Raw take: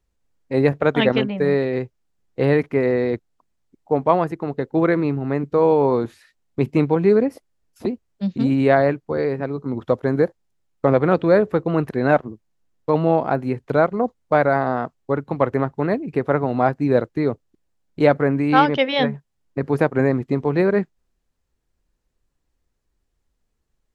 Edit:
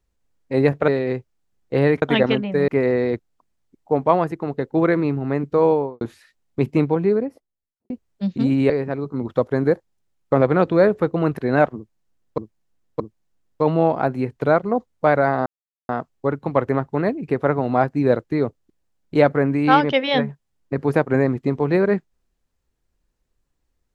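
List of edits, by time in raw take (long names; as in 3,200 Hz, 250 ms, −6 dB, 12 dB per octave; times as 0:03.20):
0:00.88–0:01.54: move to 0:02.68
0:05.64–0:06.01: fade out and dull
0:06.63–0:07.90: fade out and dull
0:08.70–0:09.22: remove
0:12.28–0:12.90: repeat, 3 plays
0:14.74: splice in silence 0.43 s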